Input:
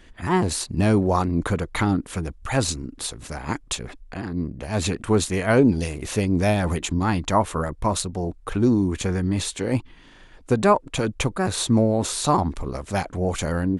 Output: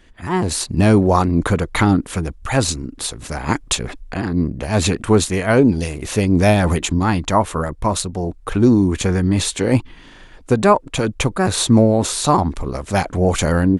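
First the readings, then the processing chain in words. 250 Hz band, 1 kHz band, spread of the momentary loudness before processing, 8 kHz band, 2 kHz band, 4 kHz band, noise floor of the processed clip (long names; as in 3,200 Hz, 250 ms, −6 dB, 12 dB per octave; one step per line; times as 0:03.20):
+6.0 dB, +5.0 dB, 11 LU, +5.5 dB, +5.5 dB, +6.0 dB, −43 dBFS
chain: automatic gain control
level −1 dB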